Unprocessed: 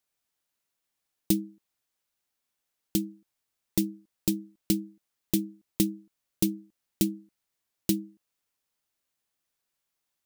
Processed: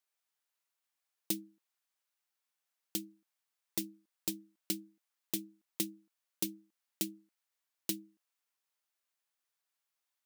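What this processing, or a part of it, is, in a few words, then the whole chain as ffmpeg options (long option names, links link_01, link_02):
filter by subtraction: -filter_complex "[0:a]asplit=2[link_01][link_02];[link_02]lowpass=1100,volume=-1[link_03];[link_01][link_03]amix=inputs=2:normalize=0,volume=-5dB"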